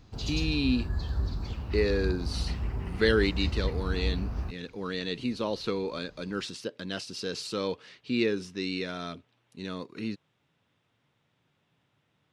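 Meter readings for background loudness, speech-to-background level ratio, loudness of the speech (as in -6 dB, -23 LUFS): -34.0 LUFS, 2.5 dB, -31.5 LUFS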